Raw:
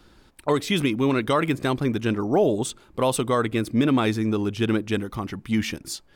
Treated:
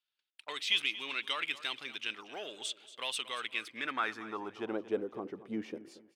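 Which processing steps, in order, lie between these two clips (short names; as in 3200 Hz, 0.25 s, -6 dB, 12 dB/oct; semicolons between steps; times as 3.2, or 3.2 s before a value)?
gate -48 dBFS, range -26 dB; HPF 240 Hz 6 dB/oct; high shelf 4100 Hz +7 dB; in parallel at -4.5 dB: soft clip -19.5 dBFS, distortion -12 dB; on the sum: band-pass sweep 2900 Hz -> 450 Hz, 3.48–5.05; feedback echo 0.231 s, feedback 30%, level -16 dB; gain -4 dB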